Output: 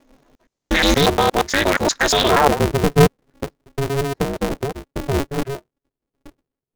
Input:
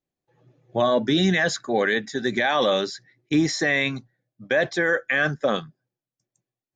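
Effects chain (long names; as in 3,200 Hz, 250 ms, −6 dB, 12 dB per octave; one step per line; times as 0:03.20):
slices reordered back to front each 118 ms, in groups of 6
low-pass filter sweep 6,400 Hz → 260 Hz, 0:02.13–0:02.63
ring modulator with a square carrier 140 Hz
level +4.5 dB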